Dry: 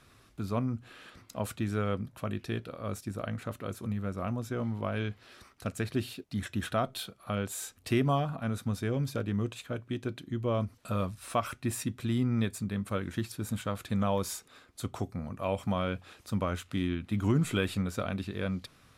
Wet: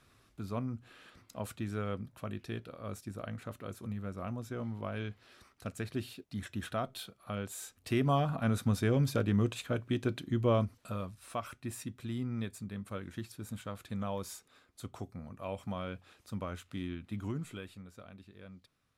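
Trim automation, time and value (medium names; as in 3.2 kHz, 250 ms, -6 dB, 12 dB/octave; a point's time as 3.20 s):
7.80 s -5.5 dB
8.38 s +2.5 dB
10.52 s +2.5 dB
11.02 s -8 dB
17.13 s -8 dB
17.79 s -18.5 dB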